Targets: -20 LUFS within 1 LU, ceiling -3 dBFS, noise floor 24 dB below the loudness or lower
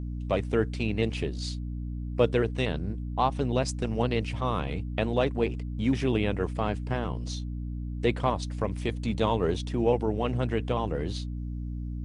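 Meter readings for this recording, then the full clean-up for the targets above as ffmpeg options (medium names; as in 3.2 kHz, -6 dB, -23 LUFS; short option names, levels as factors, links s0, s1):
hum 60 Hz; highest harmonic 300 Hz; hum level -31 dBFS; loudness -29.5 LUFS; peak level -9.0 dBFS; loudness target -20.0 LUFS
-> -af "bandreject=f=60:t=h:w=4,bandreject=f=120:t=h:w=4,bandreject=f=180:t=h:w=4,bandreject=f=240:t=h:w=4,bandreject=f=300:t=h:w=4"
-af "volume=2.99,alimiter=limit=0.708:level=0:latency=1"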